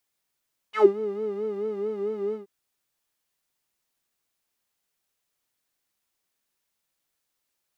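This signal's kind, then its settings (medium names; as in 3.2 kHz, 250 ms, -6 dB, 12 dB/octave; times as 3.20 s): synth patch with vibrato G#4, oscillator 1 square, interval 0 st, detune 20 cents, oscillator 2 level 0 dB, sub -9 dB, filter bandpass, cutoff 270 Hz, Q 4.9, filter envelope 3.5 oct, filter decay 0.13 s, filter sustain 5%, attack 92 ms, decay 0.11 s, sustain -10 dB, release 0.12 s, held 1.61 s, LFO 4.5 Hz, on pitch 88 cents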